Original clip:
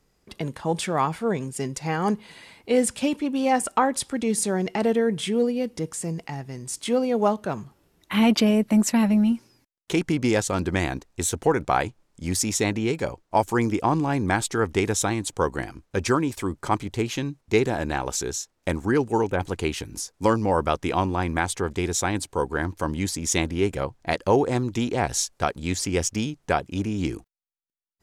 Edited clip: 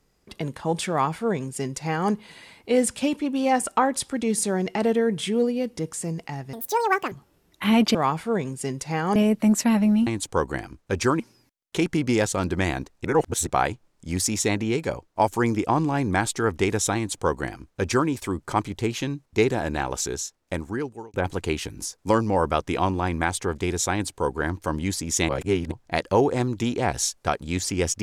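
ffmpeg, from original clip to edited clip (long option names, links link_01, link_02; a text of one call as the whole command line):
ffmpeg -i in.wav -filter_complex "[0:a]asplit=12[link_01][link_02][link_03][link_04][link_05][link_06][link_07][link_08][link_09][link_10][link_11][link_12];[link_01]atrim=end=6.534[link_13];[link_02]atrim=start=6.53:end=7.61,asetpts=PTS-STARTPTS,asetrate=81144,aresample=44100[link_14];[link_03]atrim=start=7.606:end=8.442[link_15];[link_04]atrim=start=0.898:end=2.112[link_16];[link_05]atrim=start=8.438:end=9.352[link_17];[link_06]atrim=start=15.108:end=16.242[link_18];[link_07]atrim=start=9.348:end=11.202[link_19];[link_08]atrim=start=11.198:end=11.622,asetpts=PTS-STARTPTS,areverse[link_20];[link_09]atrim=start=11.618:end=19.29,asetpts=PTS-STARTPTS,afade=type=out:start_time=6.462:duration=1.21:curve=qsin[link_21];[link_10]atrim=start=19.29:end=23.442,asetpts=PTS-STARTPTS,afade=type=in:duration=0.004:curve=hsin[link_22];[link_11]atrim=start=23.438:end=23.872,asetpts=PTS-STARTPTS,areverse[link_23];[link_12]atrim=start=23.868[link_24];[link_13][link_14]acrossfade=duration=0.004:curve1=hsin:curve2=hsin[link_25];[link_25][link_15]acrossfade=duration=0.004:curve1=hsin:curve2=hsin[link_26];[link_26][link_16]acrossfade=duration=0.004:curve1=hsin:curve2=hsin[link_27];[link_27][link_17]acrossfade=duration=0.004:curve1=hsin:curve2=hsin[link_28];[link_28][link_18]acrossfade=duration=0.004:curve1=hsin:curve2=hsin[link_29];[link_29][link_19]acrossfade=duration=0.004:curve1=hsin:curve2=hsin[link_30];[link_30][link_20]acrossfade=duration=0.004:curve1=hsin:curve2=hsin[link_31];[link_21][link_22]concat=n=2:v=0:a=1[link_32];[link_31][link_32]acrossfade=duration=0.004:curve1=hsin:curve2=hsin[link_33];[link_33][link_23]acrossfade=duration=0.004:curve1=hsin:curve2=hsin[link_34];[link_34][link_24]acrossfade=duration=0.004:curve1=hsin:curve2=hsin" out.wav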